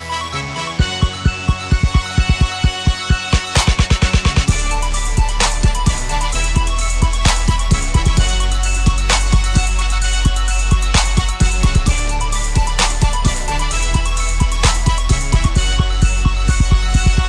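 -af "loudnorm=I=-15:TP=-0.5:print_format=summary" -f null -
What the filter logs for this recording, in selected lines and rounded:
Input Integrated:    -16.2 LUFS
Input True Peak:      -2.7 dBTP
Input LRA:             1.2 LU
Input Threshold:     -26.2 LUFS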